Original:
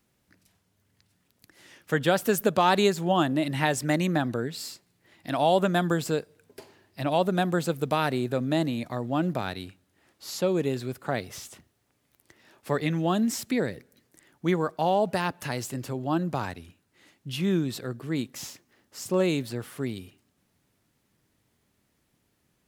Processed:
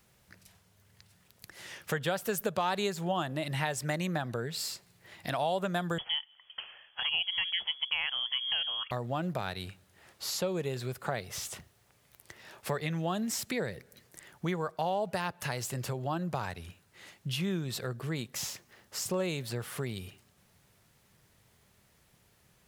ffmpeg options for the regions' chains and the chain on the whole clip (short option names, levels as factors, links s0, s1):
-filter_complex "[0:a]asettb=1/sr,asplit=3[s0][s1][s2];[s0]atrim=end=5.984[s3];[s1]atrim=start=5.98:end=8.91,asetpts=PTS-STARTPTS,afade=t=in:d=0.004:c=qsin,afade=t=out:st=2.926:d=0.004:c=qsin,highpass=f=310:p=1,lowpass=f=3000:t=q:w=0.5098,lowpass=f=3000:t=q:w=0.6013,lowpass=f=3000:t=q:w=0.9,lowpass=f=3000:t=q:w=2.563,afreqshift=-3500[s4];[s2]atrim=start=8.906[s5];[s3][s4]acrossfade=d=0.004:c1=hsin:c2=qsin[s6];[s6][s5]acrossfade=d=0.004:c1=qsin:c2=hsin,equalizer=f=280:w=2.4:g=-12,acompressor=threshold=0.00794:ratio=2.5,volume=2.24"